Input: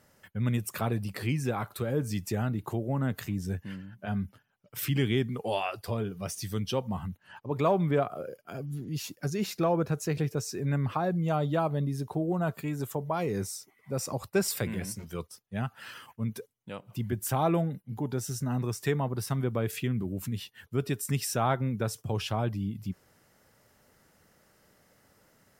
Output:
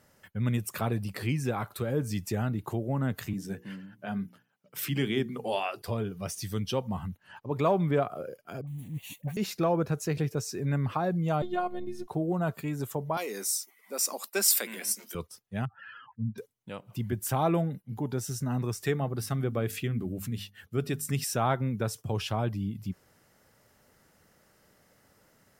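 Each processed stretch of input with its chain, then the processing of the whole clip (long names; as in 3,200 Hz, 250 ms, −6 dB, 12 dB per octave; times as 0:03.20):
0:03.33–0:05.82: high-pass filter 140 Hz 24 dB per octave + mains-hum notches 60/120/180/240/300/360/420/480 Hz
0:08.61–0:09.37: one scale factor per block 5 bits + phaser with its sweep stopped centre 1,400 Hz, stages 6 + all-pass dispersion highs, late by 64 ms, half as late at 650 Hz
0:11.42–0:12.09: phases set to zero 359 Hz + high-shelf EQ 7,800 Hz −8.5 dB
0:13.17–0:15.15: elliptic high-pass filter 210 Hz + spectral tilt +3.5 dB per octave
0:15.65–0:16.38: expanding power law on the bin magnitudes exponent 2.3 + Gaussian smoothing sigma 2.4 samples
0:18.74–0:21.24: Butterworth band-reject 960 Hz, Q 7 + mains-hum notches 50/100/150/200/250 Hz
whole clip: no processing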